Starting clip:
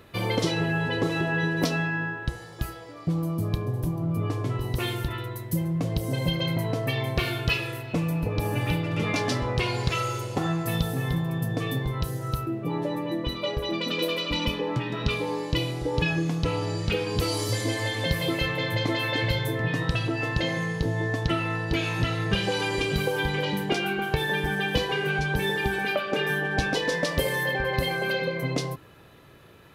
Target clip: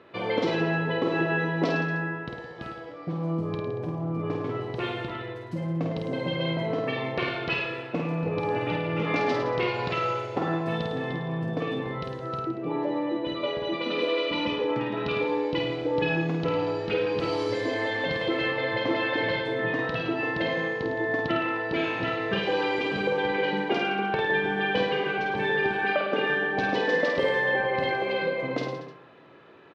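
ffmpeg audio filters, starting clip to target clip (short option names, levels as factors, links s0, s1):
-filter_complex "[0:a]highpass=250,lowpass=4300,aemphasis=mode=reproduction:type=75fm,asplit=2[s0][s1];[s1]aecho=0:1:50|105|165.5|232|305.3:0.631|0.398|0.251|0.158|0.1[s2];[s0][s2]amix=inputs=2:normalize=0"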